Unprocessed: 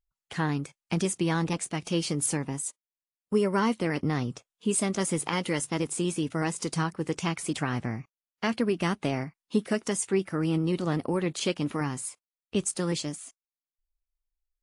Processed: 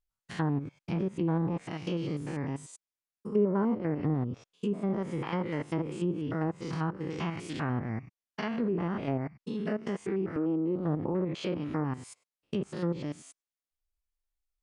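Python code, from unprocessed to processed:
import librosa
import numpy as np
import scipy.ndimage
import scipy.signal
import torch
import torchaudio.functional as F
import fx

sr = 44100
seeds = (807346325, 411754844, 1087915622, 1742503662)

y = fx.spec_steps(x, sr, hold_ms=100)
y = fx.env_lowpass_down(y, sr, base_hz=850.0, full_db=-25.0)
y = fx.highpass(y, sr, hz=220.0, slope=24, at=(10.36, 10.76))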